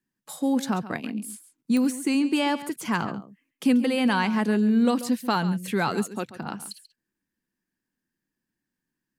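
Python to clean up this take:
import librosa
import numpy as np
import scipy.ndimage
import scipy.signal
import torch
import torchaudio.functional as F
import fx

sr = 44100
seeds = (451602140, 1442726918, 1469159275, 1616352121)

y = fx.fix_declick_ar(x, sr, threshold=10.0)
y = fx.fix_echo_inverse(y, sr, delay_ms=137, level_db=-14.5)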